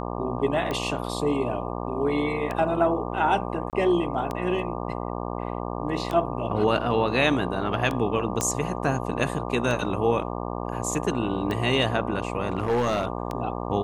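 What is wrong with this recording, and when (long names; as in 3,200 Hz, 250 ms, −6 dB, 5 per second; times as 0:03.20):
mains buzz 60 Hz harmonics 20 −31 dBFS
scratch tick 33 1/3 rpm −16 dBFS
0:03.70–0:03.73: drop-out 28 ms
0:08.41: click −11 dBFS
0:12.47–0:13.07: clipping −19 dBFS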